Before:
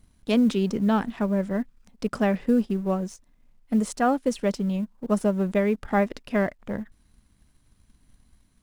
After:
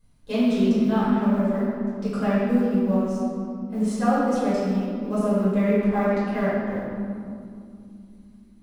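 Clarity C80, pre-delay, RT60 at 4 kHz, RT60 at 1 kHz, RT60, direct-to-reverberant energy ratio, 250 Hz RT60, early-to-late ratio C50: -0.5 dB, 6 ms, 1.4 s, 2.3 s, 2.5 s, -11.5 dB, 4.1 s, -3.0 dB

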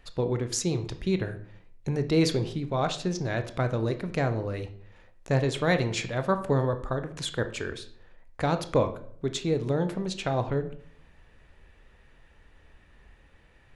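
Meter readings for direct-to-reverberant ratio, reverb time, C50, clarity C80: 8.5 dB, 0.55 s, 13.0 dB, 16.0 dB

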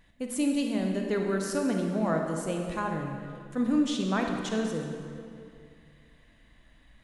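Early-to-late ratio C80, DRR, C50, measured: 4.5 dB, 2.0 dB, 3.0 dB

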